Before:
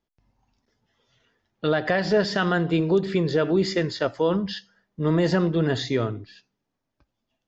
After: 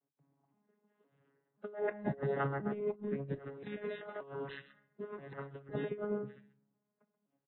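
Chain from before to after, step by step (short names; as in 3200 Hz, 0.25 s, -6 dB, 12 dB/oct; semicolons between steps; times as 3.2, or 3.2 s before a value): arpeggiated vocoder bare fifth, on C#3, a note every 0.518 s; three-band isolator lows -20 dB, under 160 Hz, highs -22 dB, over 2100 Hz; echo 0.132 s -14.5 dB; shoebox room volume 880 m³, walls furnished, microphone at 0.39 m; negative-ratio compressor -31 dBFS, ratio -0.5; 3.39–5.69 tilt shelf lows -9.5 dB; gain -5.5 dB; AAC 16 kbps 24000 Hz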